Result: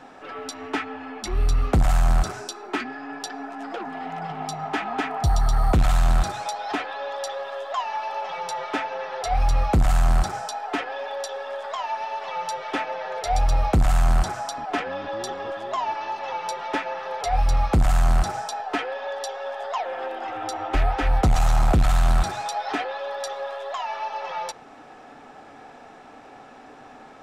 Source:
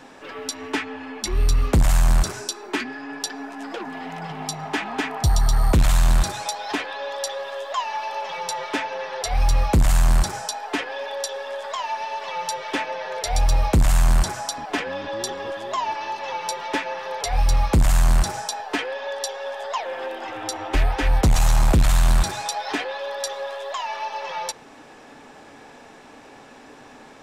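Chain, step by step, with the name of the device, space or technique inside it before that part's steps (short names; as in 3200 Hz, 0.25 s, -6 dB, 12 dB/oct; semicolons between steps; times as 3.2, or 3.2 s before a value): inside a helmet (high shelf 4900 Hz -8.5 dB; small resonant body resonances 740/1300 Hz, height 9 dB, ringing for 30 ms); gain -2 dB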